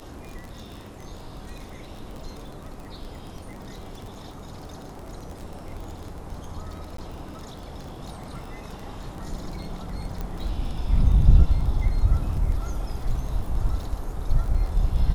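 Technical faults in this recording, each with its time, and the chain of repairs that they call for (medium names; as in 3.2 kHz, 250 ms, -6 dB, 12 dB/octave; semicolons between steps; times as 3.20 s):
crackle 22 per s -32 dBFS
6.97–6.98 s: dropout 13 ms
10.21 s: pop -19 dBFS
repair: de-click; interpolate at 6.97 s, 13 ms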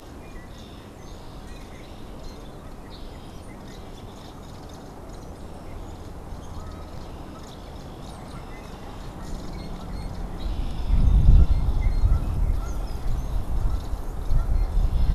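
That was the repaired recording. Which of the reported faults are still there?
nothing left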